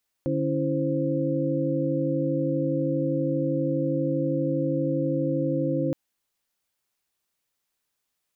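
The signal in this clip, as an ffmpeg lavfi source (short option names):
-f lavfi -i "aevalsrc='0.0398*(sin(2*PI*146.83*t)+sin(2*PI*277.18*t)+sin(2*PI*329.63*t)+sin(2*PI*523.25*t))':d=5.67:s=44100"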